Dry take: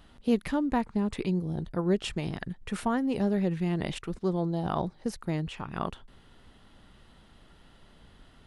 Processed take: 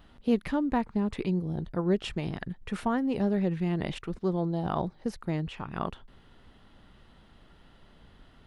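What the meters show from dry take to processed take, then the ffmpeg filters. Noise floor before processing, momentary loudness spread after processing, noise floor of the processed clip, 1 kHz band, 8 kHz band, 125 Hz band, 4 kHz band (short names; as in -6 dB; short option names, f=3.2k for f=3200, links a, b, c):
-57 dBFS, 8 LU, -58 dBFS, 0.0 dB, n/a, 0.0 dB, -2.0 dB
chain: -af "equalizer=f=9.3k:w=0.63:g=-7.5"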